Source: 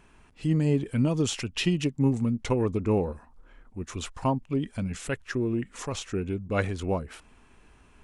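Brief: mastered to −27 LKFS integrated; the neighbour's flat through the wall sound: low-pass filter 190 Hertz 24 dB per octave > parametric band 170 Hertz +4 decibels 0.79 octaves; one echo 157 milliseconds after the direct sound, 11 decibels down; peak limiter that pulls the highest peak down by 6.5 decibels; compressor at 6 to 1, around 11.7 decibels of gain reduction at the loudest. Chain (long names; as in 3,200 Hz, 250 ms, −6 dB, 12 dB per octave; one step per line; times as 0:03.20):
downward compressor 6 to 1, threshold −32 dBFS
brickwall limiter −28 dBFS
low-pass filter 190 Hz 24 dB per octave
parametric band 170 Hz +4 dB 0.79 octaves
single-tap delay 157 ms −11 dB
level +14 dB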